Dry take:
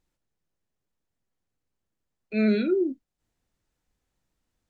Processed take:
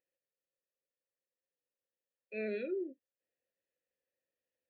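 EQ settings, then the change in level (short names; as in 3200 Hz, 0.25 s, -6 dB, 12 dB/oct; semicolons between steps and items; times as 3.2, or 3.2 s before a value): vowel filter e; +1.0 dB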